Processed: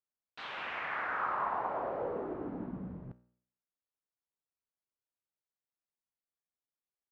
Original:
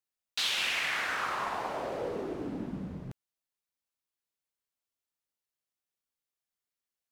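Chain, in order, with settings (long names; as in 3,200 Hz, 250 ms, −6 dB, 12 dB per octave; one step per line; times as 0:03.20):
low-pass filter 1,400 Hz 12 dB per octave
dynamic equaliser 1,100 Hz, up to +7 dB, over −49 dBFS, Q 0.71
tuned comb filter 61 Hz, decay 0.57 s, harmonics all, mix 50%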